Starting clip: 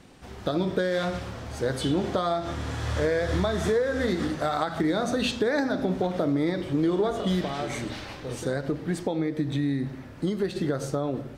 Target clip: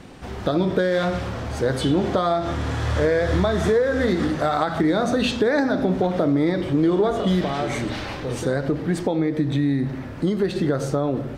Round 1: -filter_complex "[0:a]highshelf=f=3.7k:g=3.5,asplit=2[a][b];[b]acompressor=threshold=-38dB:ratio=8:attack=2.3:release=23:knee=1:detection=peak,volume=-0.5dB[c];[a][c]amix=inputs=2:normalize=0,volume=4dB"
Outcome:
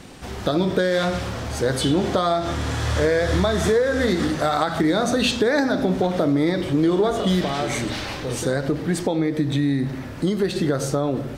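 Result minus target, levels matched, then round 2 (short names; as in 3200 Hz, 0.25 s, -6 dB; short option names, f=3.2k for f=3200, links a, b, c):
8000 Hz band +7.0 dB
-filter_complex "[0:a]highshelf=f=3.7k:g=-6,asplit=2[a][b];[b]acompressor=threshold=-38dB:ratio=8:attack=2.3:release=23:knee=1:detection=peak,volume=-0.5dB[c];[a][c]amix=inputs=2:normalize=0,volume=4dB"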